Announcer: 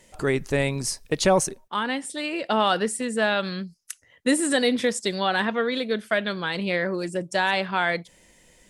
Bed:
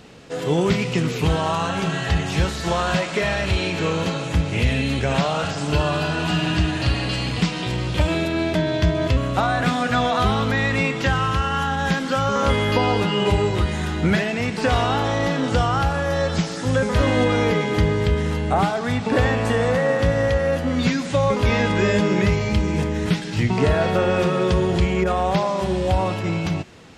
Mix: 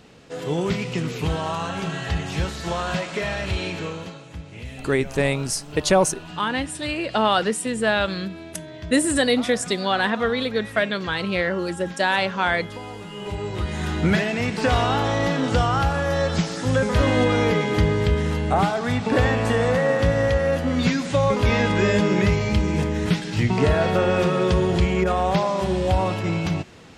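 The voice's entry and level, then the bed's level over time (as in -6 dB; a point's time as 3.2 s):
4.65 s, +2.0 dB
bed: 3.71 s -4.5 dB
4.25 s -16.5 dB
13.04 s -16.5 dB
13.9 s -0.5 dB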